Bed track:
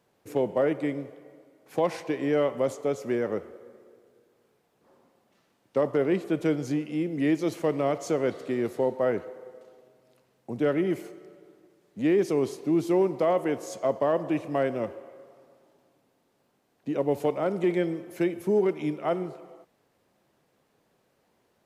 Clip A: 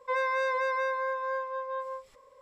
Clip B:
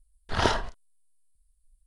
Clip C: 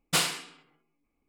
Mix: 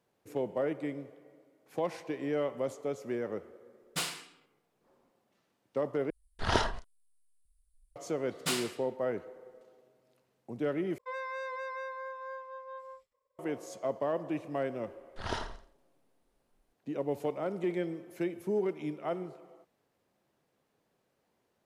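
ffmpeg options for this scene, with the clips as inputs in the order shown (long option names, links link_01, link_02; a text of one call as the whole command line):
ffmpeg -i bed.wav -i cue0.wav -i cue1.wav -i cue2.wav -filter_complex "[3:a]asplit=2[link_01][link_02];[2:a]asplit=2[link_03][link_04];[0:a]volume=-7.5dB[link_05];[1:a]agate=range=-33dB:threshold=-48dB:ratio=3:release=100:detection=peak[link_06];[link_04]aecho=1:1:85|170|255:0.251|0.0728|0.0211[link_07];[link_05]asplit=3[link_08][link_09][link_10];[link_08]atrim=end=6.104[link_11];[link_03]atrim=end=1.86,asetpts=PTS-STARTPTS,volume=-4dB[link_12];[link_09]atrim=start=7.956:end=10.984[link_13];[link_06]atrim=end=2.41,asetpts=PTS-STARTPTS,volume=-10dB[link_14];[link_10]atrim=start=13.386[link_15];[link_01]atrim=end=1.28,asetpts=PTS-STARTPTS,volume=-9dB,afade=type=in:duration=0.004:curve=hsin,afade=type=out:start_time=1.276:duration=0.004:curve=hsin,adelay=3830[link_16];[link_02]atrim=end=1.28,asetpts=PTS-STARTPTS,volume=-7.5dB,afade=type=in:duration=0.004:curve=hsin,afade=type=out:start_time=1.276:duration=0.004:curve=hsin,adelay=8330[link_17];[link_07]atrim=end=1.86,asetpts=PTS-STARTPTS,volume=-12dB,afade=type=in:duration=0.004:curve=hsin,afade=type=out:start_time=1.856:duration=0.004:curve=hsin,adelay=14870[link_18];[link_11][link_12]acrossfade=duration=0.004:curve1=hsin:curve2=hsin[link_19];[link_19][link_13]acrossfade=duration=0.004:curve1=hsin:curve2=hsin[link_20];[link_20][link_14]acrossfade=duration=0.004:curve1=hsin:curve2=hsin[link_21];[link_21][link_15]acrossfade=duration=0.004:curve1=hsin:curve2=hsin[link_22];[link_22][link_16][link_17][link_18]amix=inputs=4:normalize=0" out.wav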